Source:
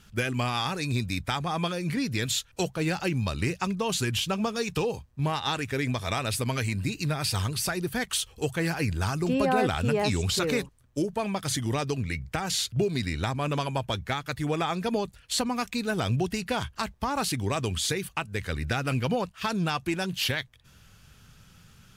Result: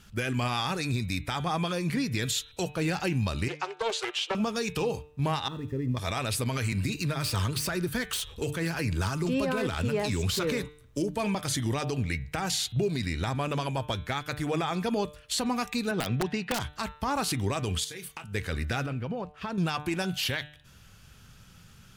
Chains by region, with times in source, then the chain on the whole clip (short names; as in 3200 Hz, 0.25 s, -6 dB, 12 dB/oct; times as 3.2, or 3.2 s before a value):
3.48–4.35 steep high-pass 360 Hz 96 dB/oct + air absorption 92 m + Doppler distortion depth 0.27 ms
5.48–5.97 switching spikes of -23 dBFS + running mean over 58 samples
6.72–11.35 self-modulated delay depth 0.056 ms + notch 760 Hz, Q 7 + three-band squash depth 40%
15.91–16.6 BPF 140–3700 Hz + wrapped overs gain 18 dB
17.84–18.24 tilt +1.5 dB/oct + compressor 10:1, threshold -37 dBFS + doubler 29 ms -9.5 dB
18.86–19.58 LPF 1300 Hz 6 dB/oct + compressor 3:1, threshold -32 dBFS
whole clip: de-hum 149.4 Hz, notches 27; limiter -20.5 dBFS; gain +1 dB